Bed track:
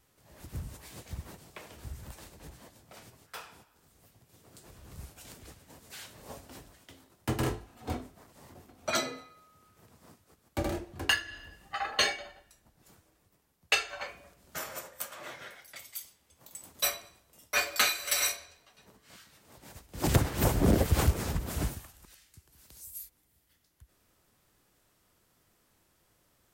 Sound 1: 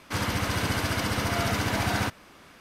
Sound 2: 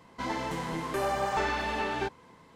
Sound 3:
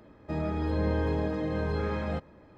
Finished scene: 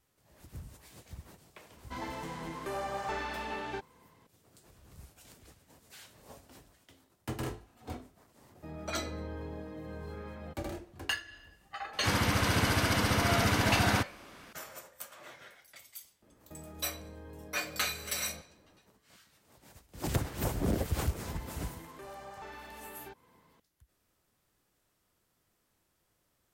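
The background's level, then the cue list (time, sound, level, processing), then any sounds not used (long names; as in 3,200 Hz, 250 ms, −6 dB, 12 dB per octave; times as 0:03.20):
bed track −6.5 dB
0:01.72: mix in 2 −7 dB
0:08.34: mix in 3 −13 dB
0:11.93: mix in 1 −0.5 dB
0:16.22: mix in 3 −9.5 dB + downward compressor, threshold −35 dBFS
0:21.05: mix in 2 −9 dB + downward compressor 1.5 to 1, threshold −49 dBFS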